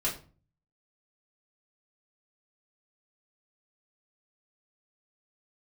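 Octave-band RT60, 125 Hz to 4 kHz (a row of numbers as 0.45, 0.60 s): 0.75, 0.55, 0.40, 0.35, 0.30, 0.30 s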